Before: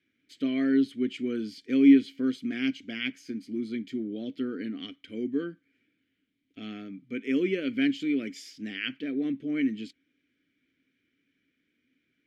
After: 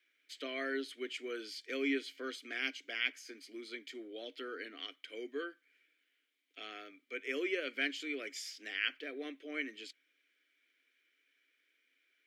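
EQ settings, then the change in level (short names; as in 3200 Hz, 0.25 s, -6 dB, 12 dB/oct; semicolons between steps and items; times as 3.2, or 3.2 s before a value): Bessel high-pass 690 Hz, order 6; dynamic EQ 3000 Hz, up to -5 dB, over -50 dBFS, Q 1; +3.0 dB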